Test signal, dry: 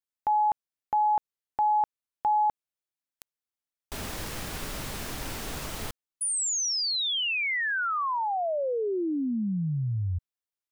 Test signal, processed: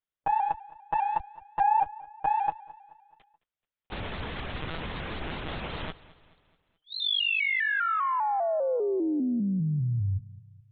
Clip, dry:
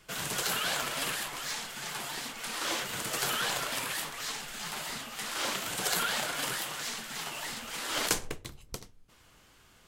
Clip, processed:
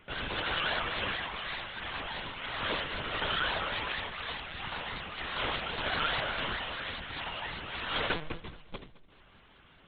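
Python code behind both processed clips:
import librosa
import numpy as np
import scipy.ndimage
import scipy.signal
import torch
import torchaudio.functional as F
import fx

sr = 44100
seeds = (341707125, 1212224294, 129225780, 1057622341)

p1 = fx.diode_clip(x, sr, knee_db=-18.5)
p2 = fx.lpc_monotone(p1, sr, seeds[0], pitch_hz=160.0, order=16)
p3 = p2 + fx.echo_feedback(p2, sr, ms=215, feedback_pct=48, wet_db=-19.5, dry=0)
p4 = fx.vibrato_shape(p3, sr, shape='saw_up', rate_hz=5.0, depth_cents=100.0)
y = F.gain(torch.from_numpy(p4), 2.0).numpy()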